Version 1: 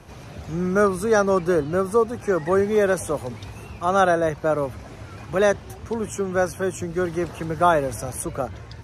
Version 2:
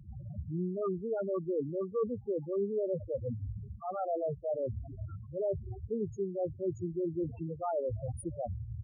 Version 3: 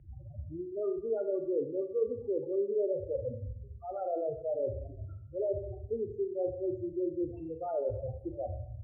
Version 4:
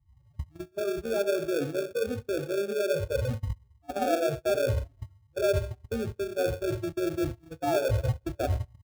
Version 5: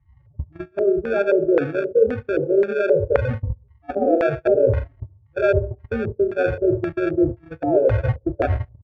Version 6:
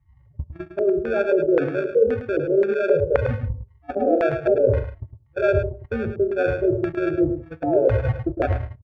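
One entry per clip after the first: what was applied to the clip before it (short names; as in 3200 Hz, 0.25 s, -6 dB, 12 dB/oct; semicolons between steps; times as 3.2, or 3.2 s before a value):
high shelf 8500 Hz -9.5 dB; reverse; compressor 6:1, threshold -29 dBFS, peak gain reduction 15.5 dB; reverse; loudest bins only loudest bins 4
LPF 2200 Hz 24 dB/oct; fixed phaser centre 450 Hz, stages 4; Schroeder reverb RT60 0.71 s, combs from 31 ms, DRR 6.5 dB; gain +1.5 dB
gate -37 dBFS, range -27 dB; comb 1.2 ms, depth 62%; in parallel at -4.5 dB: sample-rate reducer 1000 Hz, jitter 0%; on the sum: gain +6.5 dB
LFO low-pass square 1.9 Hz 470–1900 Hz; gain +6.5 dB
echo 0.106 s -9 dB; gain -1.5 dB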